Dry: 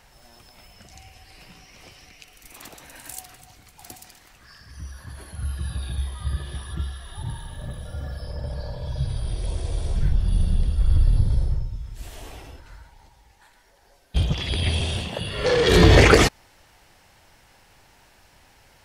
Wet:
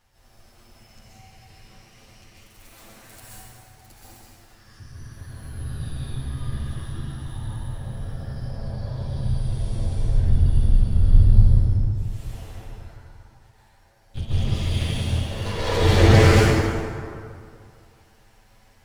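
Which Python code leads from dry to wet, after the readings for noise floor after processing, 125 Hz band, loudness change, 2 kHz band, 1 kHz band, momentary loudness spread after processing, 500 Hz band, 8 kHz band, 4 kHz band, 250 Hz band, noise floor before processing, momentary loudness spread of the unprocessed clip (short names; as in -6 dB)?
-55 dBFS, +3.5 dB, +0.5 dB, -3.5 dB, -1.0 dB, 22 LU, -2.5 dB, -3.5 dB, -4.5 dB, 0.0 dB, -56 dBFS, 23 LU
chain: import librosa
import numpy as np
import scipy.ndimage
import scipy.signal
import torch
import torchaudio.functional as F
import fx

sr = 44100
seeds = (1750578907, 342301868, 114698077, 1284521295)

y = fx.lower_of_two(x, sr, delay_ms=9.0)
y = fx.low_shelf(y, sr, hz=120.0, db=8.0)
y = fx.rev_plate(y, sr, seeds[0], rt60_s=2.3, hf_ratio=0.55, predelay_ms=120, drr_db=-9.0)
y = y * 10.0 ** (-11.5 / 20.0)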